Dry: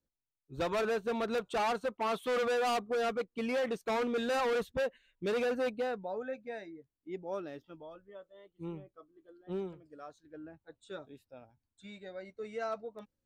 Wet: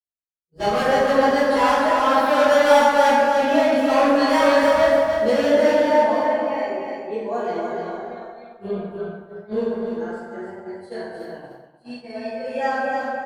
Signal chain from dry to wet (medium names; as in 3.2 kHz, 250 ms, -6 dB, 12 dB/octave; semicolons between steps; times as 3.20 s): frequency-domain pitch shifter +3 st; on a send: feedback delay 300 ms, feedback 27%, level -5 dB; on the sum: plate-style reverb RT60 1.9 s, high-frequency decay 0.45×, DRR -10 dB; expander -36 dBFS; trim +6 dB